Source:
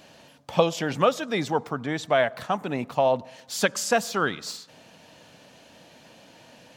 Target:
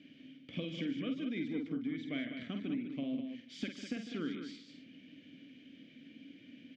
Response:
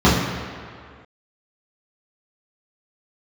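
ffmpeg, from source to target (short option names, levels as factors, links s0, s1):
-filter_complex "[0:a]asplit=3[s0][s1][s2];[s0]bandpass=f=270:t=q:w=8,volume=1[s3];[s1]bandpass=f=2290:t=q:w=8,volume=0.501[s4];[s2]bandpass=f=3010:t=q:w=8,volume=0.355[s5];[s3][s4][s5]amix=inputs=3:normalize=0,lowshelf=f=260:g=10,acompressor=threshold=0.0112:ratio=6,lowpass=5600,bandreject=f=4200:w=15,asplit=2[s6][s7];[s7]aecho=0:1:49.56|151.6|201.2:0.447|0.251|0.398[s8];[s6][s8]amix=inputs=2:normalize=0,volume=1.41"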